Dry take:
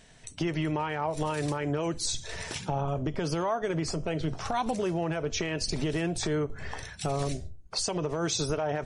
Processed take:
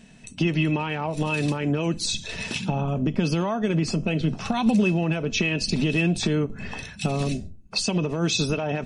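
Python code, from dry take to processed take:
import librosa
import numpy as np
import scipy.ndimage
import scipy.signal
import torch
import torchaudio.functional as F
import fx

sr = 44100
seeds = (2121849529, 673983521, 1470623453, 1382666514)

y = fx.small_body(x, sr, hz=(210.0, 2600.0), ring_ms=50, db=17)
y = fx.dynamic_eq(y, sr, hz=3500.0, q=1.3, threshold_db=-47.0, ratio=4.0, max_db=8)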